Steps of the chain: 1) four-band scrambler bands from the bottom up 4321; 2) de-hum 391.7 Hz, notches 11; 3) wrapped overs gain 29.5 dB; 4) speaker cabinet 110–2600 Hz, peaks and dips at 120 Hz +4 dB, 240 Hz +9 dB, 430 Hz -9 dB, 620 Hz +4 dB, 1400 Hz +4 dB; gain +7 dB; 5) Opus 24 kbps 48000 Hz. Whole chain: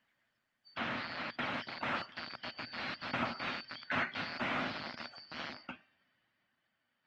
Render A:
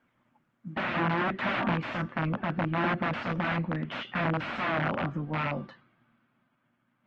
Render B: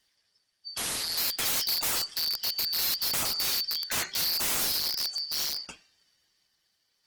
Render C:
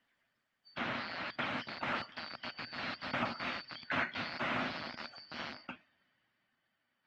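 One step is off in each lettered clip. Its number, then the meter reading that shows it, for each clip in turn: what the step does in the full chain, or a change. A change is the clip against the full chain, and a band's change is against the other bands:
1, 4 kHz band -10.5 dB; 4, 4 kHz band +16.5 dB; 2, crest factor change -1.5 dB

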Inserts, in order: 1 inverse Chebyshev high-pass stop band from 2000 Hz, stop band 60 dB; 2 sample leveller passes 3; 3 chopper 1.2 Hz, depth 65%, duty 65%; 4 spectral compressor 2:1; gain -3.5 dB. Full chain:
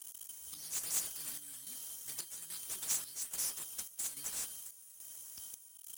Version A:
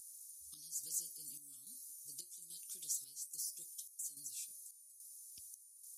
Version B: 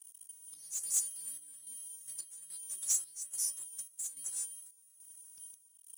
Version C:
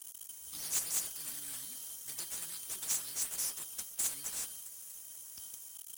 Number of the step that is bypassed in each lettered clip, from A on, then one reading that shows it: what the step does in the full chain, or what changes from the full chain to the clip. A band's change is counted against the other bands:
2, crest factor change +4.0 dB; 4, momentary loudness spread change +7 LU; 3, loudness change +2.0 LU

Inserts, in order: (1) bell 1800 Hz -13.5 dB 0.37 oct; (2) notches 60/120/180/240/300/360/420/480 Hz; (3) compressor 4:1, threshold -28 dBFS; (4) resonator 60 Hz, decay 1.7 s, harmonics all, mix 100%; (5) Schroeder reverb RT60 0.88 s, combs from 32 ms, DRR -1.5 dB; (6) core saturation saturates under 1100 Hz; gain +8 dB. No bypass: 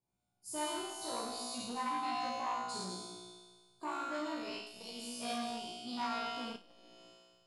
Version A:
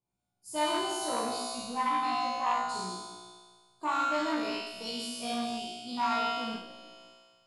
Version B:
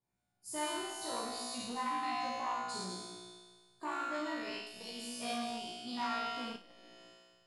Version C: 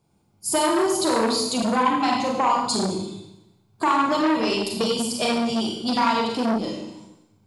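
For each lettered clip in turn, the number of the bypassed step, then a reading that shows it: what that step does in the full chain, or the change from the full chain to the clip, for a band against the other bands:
3, momentary loudness spread change -1 LU; 1, 2 kHz band +2.5 dB; 4, 125 Hz band +5.5 dB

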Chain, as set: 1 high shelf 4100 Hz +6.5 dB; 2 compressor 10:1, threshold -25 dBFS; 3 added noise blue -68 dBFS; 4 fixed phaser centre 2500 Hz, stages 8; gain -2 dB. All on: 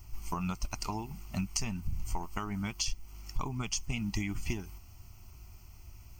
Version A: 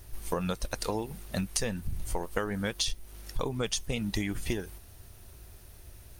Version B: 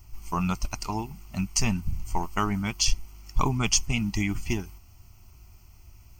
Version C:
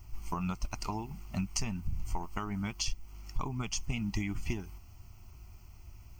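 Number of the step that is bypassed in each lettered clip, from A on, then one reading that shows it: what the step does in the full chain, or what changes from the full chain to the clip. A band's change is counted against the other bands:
4, 500 Hz band +11.0 dB; 2, mean gain reduction 4.5 dB; 1, 8 kHz band -2.0 dB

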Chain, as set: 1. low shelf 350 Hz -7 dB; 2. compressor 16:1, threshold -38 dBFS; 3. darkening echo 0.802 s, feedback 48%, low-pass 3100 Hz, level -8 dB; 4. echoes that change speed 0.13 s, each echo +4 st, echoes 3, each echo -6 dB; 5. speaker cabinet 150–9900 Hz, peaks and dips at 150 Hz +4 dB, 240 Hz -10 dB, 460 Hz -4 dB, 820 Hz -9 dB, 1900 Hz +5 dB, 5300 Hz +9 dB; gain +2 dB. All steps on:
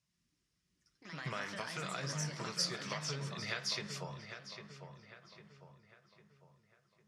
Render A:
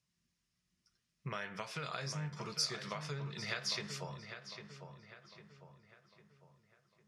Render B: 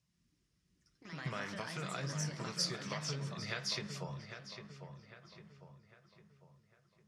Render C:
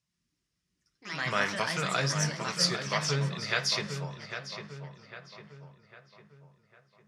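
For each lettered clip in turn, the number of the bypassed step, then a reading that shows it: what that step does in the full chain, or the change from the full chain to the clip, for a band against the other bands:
4, 8 kHz band -2.0 dB; 1, 125 Hz band +3.0 dB; 2, mean gain reduction 7.5 dB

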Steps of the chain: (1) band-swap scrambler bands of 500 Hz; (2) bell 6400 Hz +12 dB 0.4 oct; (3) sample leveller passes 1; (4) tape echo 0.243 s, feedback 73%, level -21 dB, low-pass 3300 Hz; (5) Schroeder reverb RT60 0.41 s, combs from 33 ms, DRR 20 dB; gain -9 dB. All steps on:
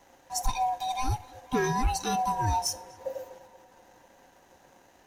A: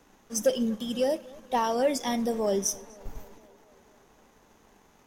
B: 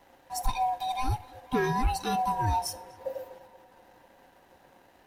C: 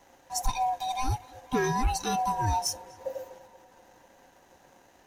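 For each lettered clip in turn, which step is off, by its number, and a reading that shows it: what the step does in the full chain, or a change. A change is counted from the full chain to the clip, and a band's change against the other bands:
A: 1, 125 Hz band -12.5 dB; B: 2, 8 kHz band -6.5 dB; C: 5, echo-to-direct -18.0 dB to -23.0 dB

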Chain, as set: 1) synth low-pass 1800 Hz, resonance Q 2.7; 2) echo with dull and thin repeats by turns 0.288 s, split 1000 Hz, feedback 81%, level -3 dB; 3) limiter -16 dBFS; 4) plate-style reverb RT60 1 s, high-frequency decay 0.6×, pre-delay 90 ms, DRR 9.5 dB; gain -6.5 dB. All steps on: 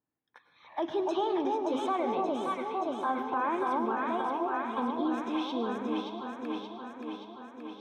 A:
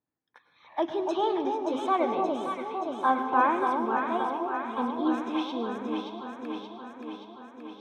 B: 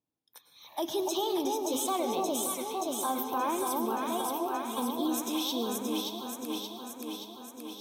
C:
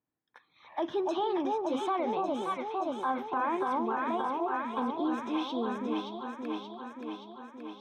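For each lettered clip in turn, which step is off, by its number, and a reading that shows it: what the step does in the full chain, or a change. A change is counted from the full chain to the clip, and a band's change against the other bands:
3, crest factor change +6.0 dB; 1, 4 kHz band +10.0 dB; 4, crest factor change -2.0 dB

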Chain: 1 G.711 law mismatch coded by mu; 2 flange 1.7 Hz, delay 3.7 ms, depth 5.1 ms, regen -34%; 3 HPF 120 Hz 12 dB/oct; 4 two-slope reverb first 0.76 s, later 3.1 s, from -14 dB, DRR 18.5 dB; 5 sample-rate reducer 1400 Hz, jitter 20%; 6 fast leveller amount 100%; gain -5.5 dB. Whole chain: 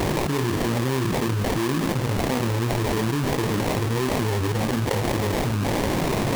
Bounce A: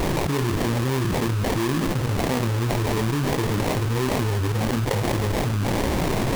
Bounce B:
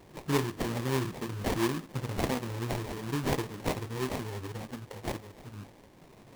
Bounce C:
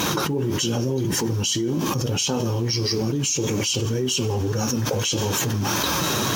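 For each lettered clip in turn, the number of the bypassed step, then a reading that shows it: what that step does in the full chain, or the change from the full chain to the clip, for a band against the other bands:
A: 3, 125 Hz band +2.0 dB; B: 6, crest factor change +5.5 dB; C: 5, crest factor change +2.0 dB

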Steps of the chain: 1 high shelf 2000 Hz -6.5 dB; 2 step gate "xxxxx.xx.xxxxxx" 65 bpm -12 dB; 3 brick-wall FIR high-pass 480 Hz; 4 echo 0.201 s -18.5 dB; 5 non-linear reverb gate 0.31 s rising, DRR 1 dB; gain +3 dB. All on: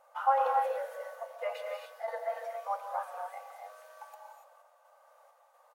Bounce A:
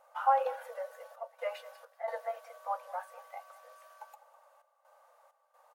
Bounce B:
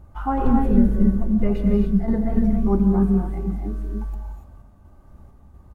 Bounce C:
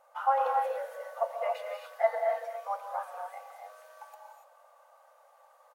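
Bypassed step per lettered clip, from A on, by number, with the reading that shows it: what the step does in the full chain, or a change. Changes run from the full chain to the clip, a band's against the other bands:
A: 5, momentary loudness spread change +3 LU; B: 3, crest factor change -4.5 dB; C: 2, 500 Hz band +3.0 dB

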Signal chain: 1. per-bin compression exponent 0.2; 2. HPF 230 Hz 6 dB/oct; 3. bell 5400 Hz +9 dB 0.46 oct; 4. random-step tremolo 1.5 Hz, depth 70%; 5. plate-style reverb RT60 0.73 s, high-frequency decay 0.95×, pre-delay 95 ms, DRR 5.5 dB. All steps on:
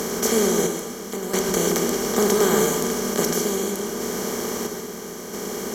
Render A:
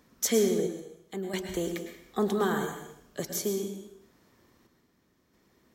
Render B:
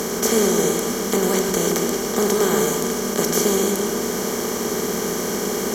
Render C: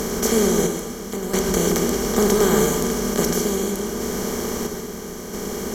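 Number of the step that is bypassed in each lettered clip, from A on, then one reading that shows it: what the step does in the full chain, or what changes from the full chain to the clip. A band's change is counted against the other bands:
1, 8 kHz band -2.5 dB; 4, momentary loudness spread change -7 LU; 2, 125 Hz band +4.5 dB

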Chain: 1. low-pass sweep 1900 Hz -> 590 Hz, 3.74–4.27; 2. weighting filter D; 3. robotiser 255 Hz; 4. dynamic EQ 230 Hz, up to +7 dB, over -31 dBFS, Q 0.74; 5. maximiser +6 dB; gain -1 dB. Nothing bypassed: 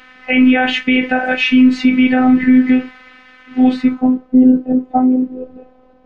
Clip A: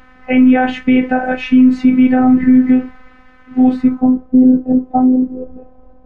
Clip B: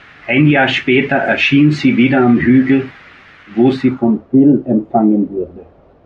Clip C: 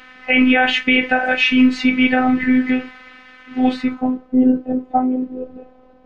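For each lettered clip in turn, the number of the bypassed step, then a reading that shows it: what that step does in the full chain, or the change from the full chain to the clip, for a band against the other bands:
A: 2, 2 kHz band -7.5 dB; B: 3, 125 Hz band +17.0 dB; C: 4, 250 Hz band -5.0 dB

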